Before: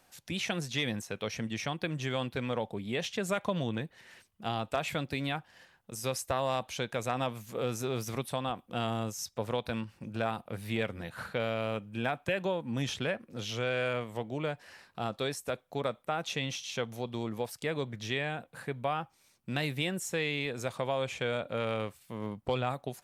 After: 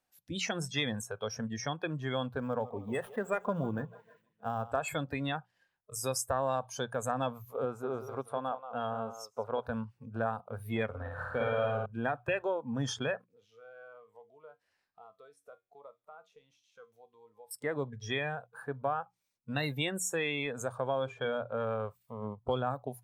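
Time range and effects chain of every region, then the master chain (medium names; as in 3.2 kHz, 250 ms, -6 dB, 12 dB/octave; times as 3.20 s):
2.39–4.72 s: median filter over 9 samples + feedback delay 156 ms, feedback 56%, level -15 dB
7.65–9.66 s: tone controls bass -8 dB, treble -10 dB + delay 181 ms -9.5 dB
10.86–11.86 s: treble shelf 8.9 kHz -8.5 dB + flutter echo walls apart 9.5 m, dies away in 1.3 s
13.26–17.51 s: compression 2:1, threshold -49 dBFS + feedback comb 94 Hz, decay 0.41 s
20.99–21.85 s: treble shelf 6.6 kHz -8 dB + hum notches 50/100/150/200/250/300/350/400 Hz
whole clip: spectral noise reduction 19 dB; hum notches 60/120/180 Hz; dynamic bell 8 kHz, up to +5 dB, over -58 dBFS, Q 1.1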